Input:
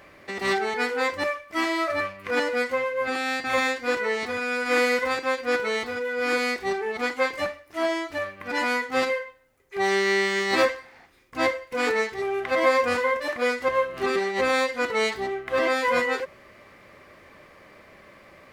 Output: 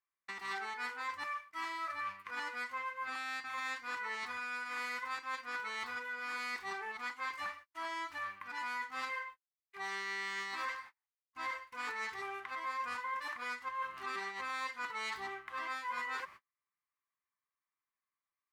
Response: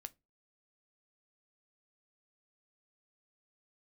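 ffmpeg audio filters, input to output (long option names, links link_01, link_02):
-af "agate=range=-41dB:threshold=-42dB:ratio=16:detection=peak,lowshelf=frequency=760:width_type=q:width=3:gain=-9.5,areverse,acompressor=threshold=-31dB:ratio=6,areverse,volume=-6.5dB"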